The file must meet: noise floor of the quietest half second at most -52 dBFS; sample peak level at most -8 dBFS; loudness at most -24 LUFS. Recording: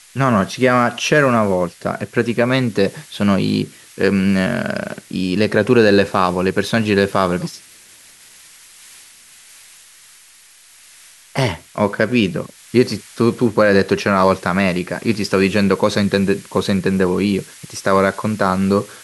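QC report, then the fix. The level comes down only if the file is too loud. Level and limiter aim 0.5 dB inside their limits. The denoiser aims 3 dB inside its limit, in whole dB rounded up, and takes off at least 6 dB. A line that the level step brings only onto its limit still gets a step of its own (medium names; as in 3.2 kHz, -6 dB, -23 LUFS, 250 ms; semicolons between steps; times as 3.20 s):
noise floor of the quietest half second -47 dBFS: fail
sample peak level -1.5 dBFS: fail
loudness -17.0 LUFS: fail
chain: trim -7.5 dB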